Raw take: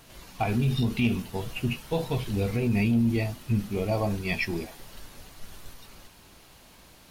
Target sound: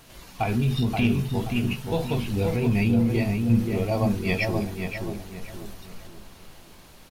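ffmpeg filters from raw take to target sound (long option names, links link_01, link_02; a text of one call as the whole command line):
ffmpeg -i in.wav -filter_complex "[0:a]asplit=2[link_01][link_02];[link_02]adelay=528,lowpass=frequency=1700:poles=1,volume=-3.5dB,asplit=2[link_03][link_04];[link_04]adelay=528,lowpass=frequency=1700:poles=1,volume=0.39,asplit=2[link_05][link_06];[link_06]adelay=528,lowpass=frequency=1700:poles=1,volume=0.39,asplit=2[link_07][link_08];[link_08]adelay=528,lowpass=frequency=1700:poles=1,volume=0.39,asplit=2[link_09][link_10];[link_10]adelay=528,lowpass=frequency=1700:poles=1,volume=0.39[link_11];[link_01][link_03][link_05][link_07][link_09][link_11]amix=inputs=6:normalize=0,volume=1.5dB" out.wav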